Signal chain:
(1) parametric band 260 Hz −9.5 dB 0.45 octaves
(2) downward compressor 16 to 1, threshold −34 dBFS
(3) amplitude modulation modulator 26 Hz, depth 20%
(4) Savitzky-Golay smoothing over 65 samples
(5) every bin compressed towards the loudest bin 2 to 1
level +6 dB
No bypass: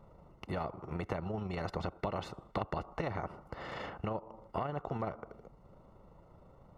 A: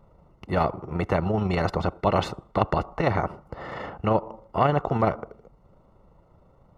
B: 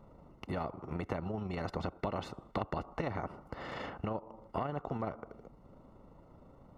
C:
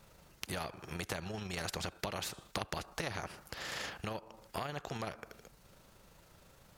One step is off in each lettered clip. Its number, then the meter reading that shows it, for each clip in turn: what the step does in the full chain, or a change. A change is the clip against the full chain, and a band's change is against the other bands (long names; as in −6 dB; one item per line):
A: 2, average gain reduction 10.0 dB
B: 1, 250 Hz band +1.5 dB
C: 4, 4 kHz band +14.0 dB